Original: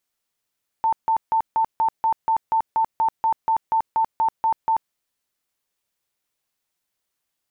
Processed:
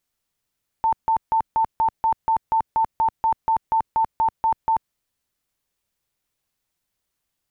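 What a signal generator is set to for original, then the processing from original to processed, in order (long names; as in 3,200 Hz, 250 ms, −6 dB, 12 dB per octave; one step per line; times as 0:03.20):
tone bursts 894 Hz, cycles 77, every 0.24 s, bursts 17, −16 dBFS
low-shelf EQ 170 Hz +11 dB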